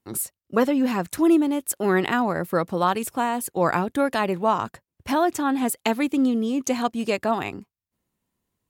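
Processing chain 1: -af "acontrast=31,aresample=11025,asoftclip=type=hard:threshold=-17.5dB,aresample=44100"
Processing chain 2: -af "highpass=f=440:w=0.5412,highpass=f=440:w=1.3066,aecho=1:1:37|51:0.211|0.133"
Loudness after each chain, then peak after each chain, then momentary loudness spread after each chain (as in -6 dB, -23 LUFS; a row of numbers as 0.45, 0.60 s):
-22.5, -26.5 LUFS; -13.0, -8.0 dBFS; 6, 6 LU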